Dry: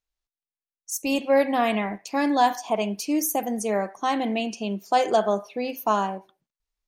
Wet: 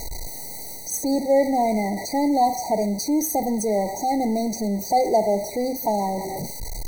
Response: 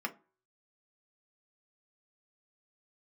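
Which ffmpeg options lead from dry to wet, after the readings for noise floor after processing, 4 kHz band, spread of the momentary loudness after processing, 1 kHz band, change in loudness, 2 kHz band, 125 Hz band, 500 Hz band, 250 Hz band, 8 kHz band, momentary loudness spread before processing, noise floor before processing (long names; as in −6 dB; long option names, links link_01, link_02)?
−34 dBFS, −1.5 dB, 12 LU, +1.5 dB, +1.5 dB, −7.0 dB, can't be measured, +2.5 dB, +3.5 dB, +4.5 dB, 8 LU, below −85 dBFS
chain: -af "aeval=exprs='val(0)+0.5*0.0631*sgn(val(0))':channel_layout=same,asuperstop=centerf=2900:order=8:qfactor=1.4,areverse,acompressor=mode=upward:threshold=-25dB:ratio=2.5,areverse,afftfilt=real='re*eq(mod(floor(b*sr/1024/950),2),0)':imag='im*eq(mod(floor(b*sr/1024/950),2),0)':win_size=1024:overlap=0.75"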